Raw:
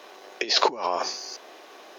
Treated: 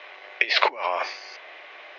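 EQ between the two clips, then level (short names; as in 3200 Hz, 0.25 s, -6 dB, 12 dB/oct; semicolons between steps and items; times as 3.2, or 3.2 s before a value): speaker cabinet 270–2800 Hz, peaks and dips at 280 Hz +3 dB, 590 Hz +6 dB, 2100 Hz +8 dB; tilt +5.5 dB/oct; 0.0 dB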